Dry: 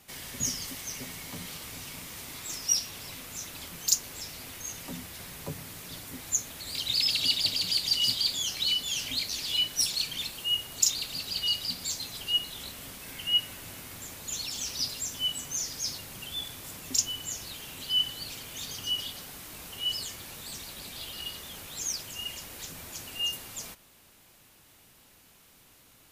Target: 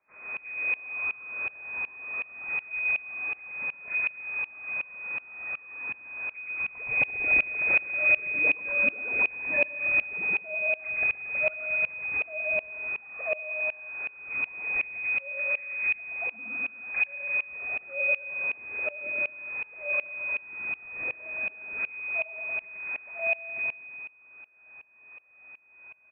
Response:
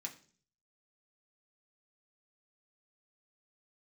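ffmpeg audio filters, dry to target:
-filter_complex "[0:a]highpass=f=830:w=0.5412,highpass=f=830:w=1.3066,tiltshelf=f=1100:g=-7.5,asplit=2[s0][s1];[s1]acompressor=threshold=0.0316:ratio=16,volume=0.75[s2];[s0][s2]amix=inputs=2:normalize=0,aeval=exprs='max(val(0),0)':c=same,aphaser=in_gain=1:out_gain=1:delay=1.8:decay=0.29:speed=0.13:type=triangular,asoftclip=type=tanh:threshold=0.299,asetrate=28595,aresample=44100,atempo=1.54221,aecho=1:1:120|228|325.2|412.7|491.4:0.631|0.398|0.251|0.158|0.1,lowpass=f=2100:t=q:w=0.5098,lowpass=f=2100:t=q:w=0.6013,lowpass=f=2100:t=q:w=0.9,lowpass=f=2100:t=q:w=2.563,afreqshift=-2500,aeval=exprs='val(0)*pow(10,-23*if(lt(mod(-2.7*n/s,1),2*abs(-2.7)/1000),1-mod(-2.7*n/s,1)/(2*abs(-2.7)/1000),(mod(-2.7*n/s,1)-2*abs(-2.7)/1000)/(1-2*abs(-2.7)/1000))/20)':c=same"

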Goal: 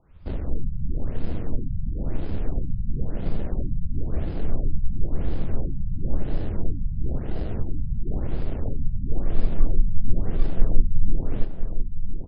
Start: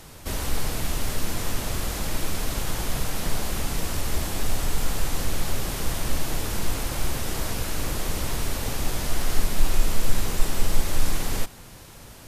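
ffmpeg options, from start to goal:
-filter_complex "[0:a]afwtdn=0.0398,equalizer=f=4200:w=6.5:g=-13,asplit=2[s0][s1];[s1]acrusher=samples=38:mix=1:aa=0.000001,volume=0.501[s2];[s0][s2]amix=inputs=2:normalize=0,asplit=2[s3][s4];[s4]adelay=1011,lowpass=f=1900:p=1,volume=0.422,asplit=2[s5][s6];[s6]adelay=1011,lowpass=f=1900:p=1,volume=0.4,asplit=2[s7][s8];[s8]adelay=1011,lowpass=f=1900:p=1,volume=0.4,asplit=2[s9][s10];[s10]adelay=1011,lowpass=f=1900:p=1,volume=0.4,asplit=2[s11][s12];[s12]adelay=1011,lowpass=f=1900:p=1,volume=0.4[s13];[s3][s5][s7][s9][s11][s13]amix=inputs=6:normalize=0,afftfilt=real='re*lt(b*sr/1024,200*pow(5200/200,0.5+0.5*sin(2*PI*0.98*pts/sr)))':imag='im*lt(b*sr/1024,200*pow(5200/200,0.5+0.5*sin(2*PI*0.98*pts/sr)))':win_size=1024:overlap=0.75,volume=0.841"

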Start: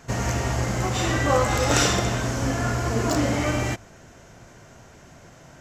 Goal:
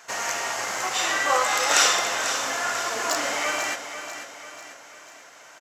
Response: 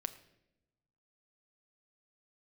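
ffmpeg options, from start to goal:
-af "highpass=870,aecho=1:1:493|986|1479|1972|2465:0.316|0.155|0.0759|0.0372|0.0182,volume=1.58"

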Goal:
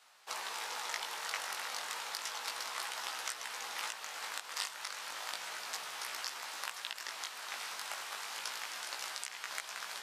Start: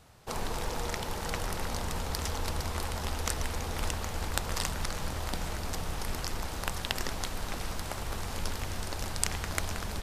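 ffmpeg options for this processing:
-af "highpass=1200,highshelf=f=9200:g=-7.5,alimiter=limit=0.106:level=0:latency=1:release=336,flanger=delay=15.5:depth=4.5:speed=0.32,volume=1.68"

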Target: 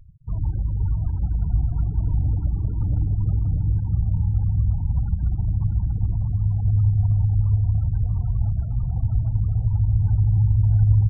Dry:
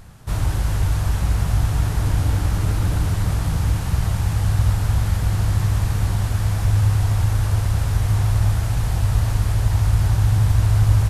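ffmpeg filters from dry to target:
-filter_complex "[0:a]acrossover=split=190|3000[s0][s1][s2];[s1]acompressor=threshold=0.0112:ratio=2[s3];[s0][s3][s2]amix=inputs=3:normalize=0,afftfilt=real='re*gte(hypot(re,im),0.0501)':imag='im*gte(hypot(re,im),0.0501)':win_size=1024:overlap=0.75,asplit=2[s4][s5];[s5]adelay=641,lowpass=f=1800:p=1,volume=0.562,asplit=2[s6][s7];[s7]adelay=641,lowpass=f=1800:p=1,volume=0.18,asplit=2[s8][s9];[s9]adelay=641,lowpass=f=1800:p=1,volume=0.18[s10];[s4][s6][s8][s10]amix=inputs=4:normalize=0,volume=0.708"

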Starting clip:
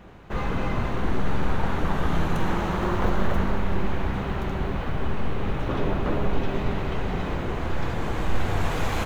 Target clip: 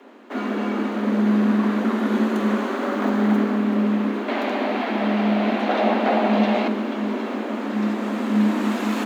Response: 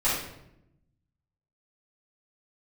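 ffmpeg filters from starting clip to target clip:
-filter_complex "[0:a]asettb=1/sr,asplit=3[s0][s1][s2];[s0]atrim=end=4.284[s3];[s1]atrim=start=4.28:end=6.68,asetpts=PTS-STARTPTS,afade=t=in:d=0.004:c=qsin,afade=t=out:st=2.396:d=0.004:c=qsin,equalizer=f=500:t=o:w=1:g=11,equalizer=f=2000:t=o:w=1:g=8,equalizer=f=4000:t=o:w=1:g=7[s4];[s2]atrim=start=6.676[s5];[s3][s4]acrossfade=d=0.004:c1=hsin:c2=qsin[s6];[s6][s5]acrossfade=d=0.004:c1=qsin:c2=hsin,afreqshift=210"

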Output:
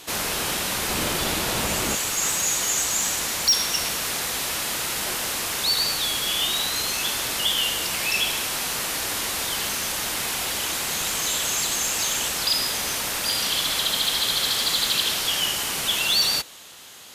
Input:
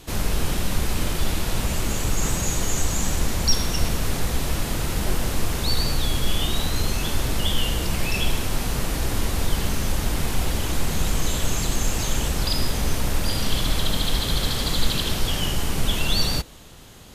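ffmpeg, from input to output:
-af "asetnsamples=n=441:p=0,asendcmd='0.88 highpass f 400;1.95 highpass f 1500',highpass=f=840:p=1,asoftclip=type=tanh:threshold=0.126,volume=2.11"

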